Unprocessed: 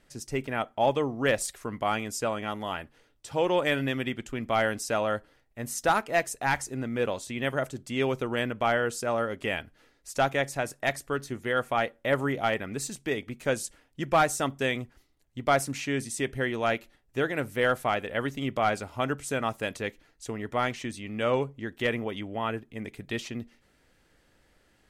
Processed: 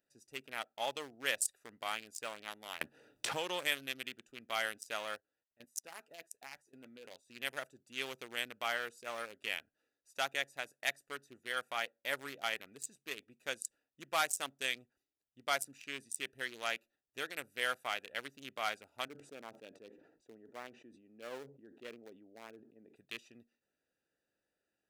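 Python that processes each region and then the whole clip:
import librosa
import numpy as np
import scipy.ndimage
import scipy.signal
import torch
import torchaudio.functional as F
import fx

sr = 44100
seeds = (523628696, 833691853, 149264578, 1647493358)

y = fx.chain(x, sr, fx.low_shelf(hz=200.0, db=11.0),
    fx.band_squash(depth_pct=100), at=(2.81, 3.68))
y = fx.chain(y, sr, fx.level_steps(step_db=17),
    fx.doubler(ms=12.0, db=-9), at=(5.15, 7.3))
y = fx.chain(y, sr, fx.bandpass_q(hz=330.0, q=0.81),
    fx.sustainer(db_per_s=58.0), at=(19.08, 22.96))
y = fx.wiener(y, sr, points=41)
y = np.diff(y, prepend=0.0)
y = F.gain(torch.from_numpy(y), 6.5).numpy()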